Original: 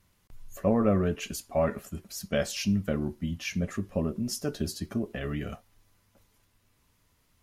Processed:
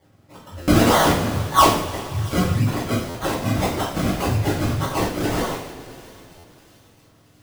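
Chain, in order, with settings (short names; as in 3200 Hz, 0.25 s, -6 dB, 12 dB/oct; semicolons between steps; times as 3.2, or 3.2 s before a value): spectrum mirrored in octaves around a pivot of 790 Hz; low shelf 310 Hz -10 dB; in parallel at -3 dB: compressor, threshold -39 dBFS, peak gain reduction 14.5 dB; on the sum: spectral delete 2.01–3.09, 1500–5300 Hz; decimation with a swept rate 33×, swing 100% 1.8 Hz; on a send: thin delay 0.674 s, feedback 51%, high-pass 2700 Hz, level -18 dB; on the sum: two-slope reverb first 0.53 s, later 3.4 s, from -18 dB, DRR -10 dB; stuck buffer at 0.62/3.09/6.38, samples 512, times 4; gain +2 dB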